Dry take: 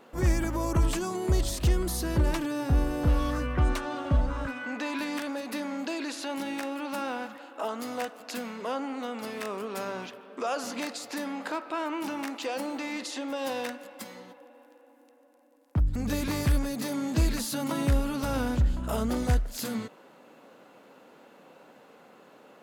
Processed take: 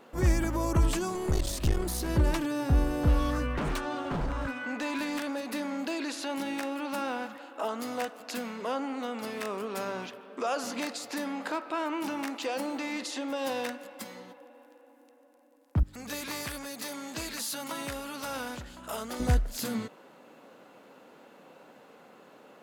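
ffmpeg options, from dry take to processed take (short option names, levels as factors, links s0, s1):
-filter_complex "[0:a]asettb=1/sr,asplit=3[s0][s1][s2];[s0]atrim=end=1.084[s3];[s1]atrim=start=1.08:end=2.09,asetpts=PTS-STARTPTS,afade=t=in:d=0.004:c=qsin,afade=t=out:st=1.006:d=0.004:c=qsin,aeval=exprs='clip(val(0),-1,0.0237)':c=same[s4];[s2]atrim=start=2.086[s5];[s3][s4]acrossfade=d=0.004:c1=hsin:c2=qsin[s6];[s6][s5]acrossfade=d=0.004:c1=qsin:c2=hsin,asettb=1/sr,asplit=3[s7][s8][s9];[s7]atrim=end=3.564[s10];[s8]atrim=start=3.56:end=6.02,asetpts=PTS-STARTPTS,afade=t=in:d=0.004:c=qsin,afade=t=out:st=2.456:d=0.004:c=qsin,aeval=exprs='0.0562*(abs(mod(val(0)/0.0562+3,4)-2)-1)':c=same[s11];[s9]atrim=start=6.016[s12];[s10][s11]acrossfade=d=0.004:c1=hsin:c2=qsin[s13];[s13][s12]acrossfade=d=0.004:c1=qsin:c2=hsin,asettb=1/sr,asplit=3[s14][s15][s16];[s14]atrim=end=15.834[s17];[s15]atrim=start=15.83:end=19.2,asetpts=PTS-STARTPTS,afade=t=in:d=0.004:c=qsin,afade=t=out:st=3.366:d=0.004:c=qsin,highpass=f=970:p=1[s18];[s16]atrim=start=19.196[s19];[s17][s18]acrossfade=d=0.004:c1=hsin:c2=qsin[s20];[s20][s19]acrossfade=d=0.004:c1=qsin:c2=hsin"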